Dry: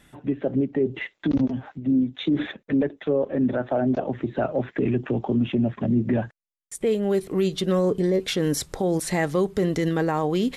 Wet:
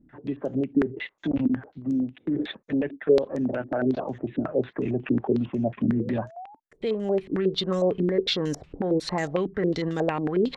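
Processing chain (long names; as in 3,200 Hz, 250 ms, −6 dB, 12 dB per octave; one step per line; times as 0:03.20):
sound drawn into the spectrogram rise, 0:05.81–0:06.60, 370–920 Hz −43 dBFS
low-pass on a step sequencer 11 Hz 280–6,500 Hz
level −5 dB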